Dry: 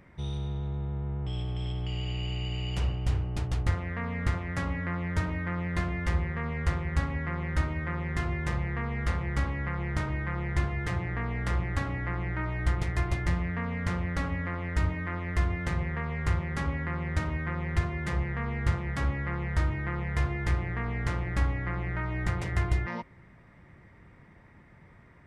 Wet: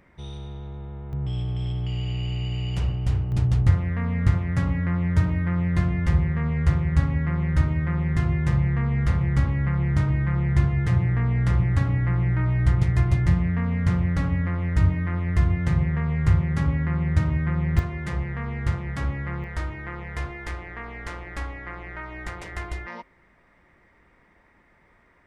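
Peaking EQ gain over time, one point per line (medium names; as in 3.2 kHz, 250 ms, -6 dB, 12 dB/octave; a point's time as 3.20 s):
peaking EQ 120 Hz 1.6 oct
-5 dB
from 1.13 s +7 dB
from 3.32 s +13.5 dB
from 17.79 s +3.5 dB
from 19.44 s -6.5 dB
from 20.31 s -14.5 dB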